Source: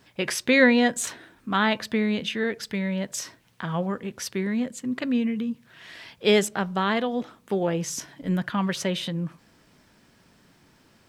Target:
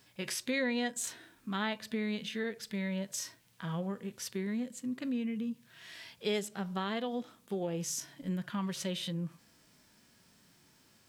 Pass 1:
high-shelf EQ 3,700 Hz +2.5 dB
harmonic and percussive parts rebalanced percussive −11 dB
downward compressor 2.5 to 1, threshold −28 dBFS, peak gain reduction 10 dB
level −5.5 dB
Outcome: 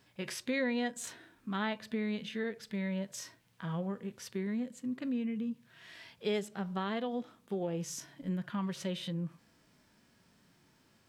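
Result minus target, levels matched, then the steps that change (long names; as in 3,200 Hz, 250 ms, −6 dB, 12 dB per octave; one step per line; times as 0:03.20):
8,000 Hz band −5.0 dB
change: high-shelf EQ 3,700 Hz +11.5 dB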